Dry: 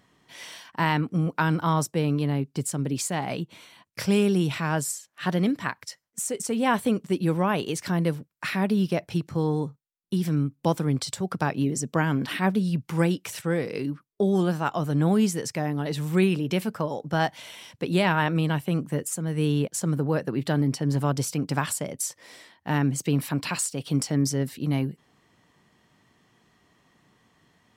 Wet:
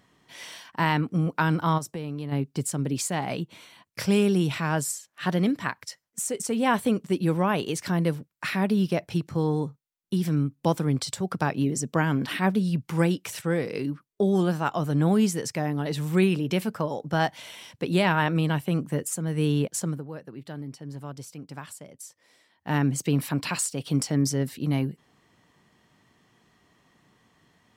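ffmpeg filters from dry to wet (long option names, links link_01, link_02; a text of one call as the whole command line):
ffmpeg -i in.wav -filter_complex "[0:a]asplit=3[link_01][link_02][link_03];[link_01]afade=type=out:start_time=1.77:duration=0.02[link_04];[link_02]acompressor=threshold=-30dB:ratio=4:attack=3.2:release=140:knee=1:detection=peak,afade=type=in:start_time=1.77:duration=0.02,afade=type=out:start_time=2.31:duration=0.02[link_05];[link_03]afade=type=in:start_time=2.31:duration=0.02[link_06];[link_04][link_05][link_06]amix=inputs=3:normalize=0,asplit=3[link_07][link_08][link_09];[link_07]atrim=end=20.04,asetpts=PTS-STARTPTS,afade=type=out:start_time=19.78:duration=0.26:silence=0.211349[link_10];[link_08]atrim=start=20.04:end=22.49,asetpts=PTS-STARTPTS,volume=-13.5dB[link_11];[link_09]atrim=start=22.49,asetpts=PTS-STARTPTS,afade=type=in:duration=0.26:silence=0.211349[link_12];[link_10][link_11][link_12]concat=n=3:v=0:a=1" out.wav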